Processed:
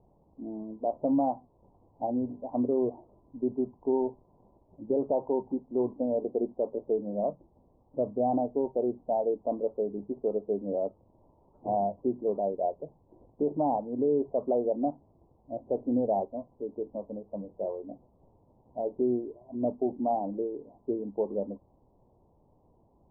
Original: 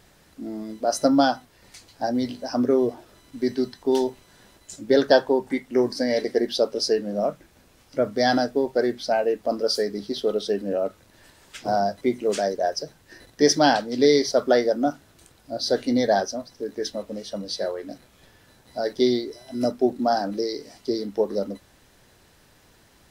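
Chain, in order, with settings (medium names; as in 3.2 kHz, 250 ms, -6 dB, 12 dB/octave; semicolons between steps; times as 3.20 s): steep low-pass 1 kHz 72 dB/octave; peak limiter -13 dBFS, peak gain reduction 7 dB; trim -5.5 dB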